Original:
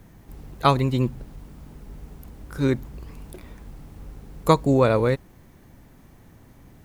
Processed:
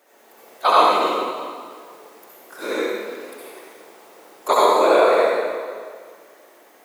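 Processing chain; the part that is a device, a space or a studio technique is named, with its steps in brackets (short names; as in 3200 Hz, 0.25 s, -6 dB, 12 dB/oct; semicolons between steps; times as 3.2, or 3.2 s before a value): whispering ghost (whisperiser; HPF 450 Hz 24 dB/oct; reverb RT60 1.9 s, pre-delay 57 ms, DRR -7.5 dB)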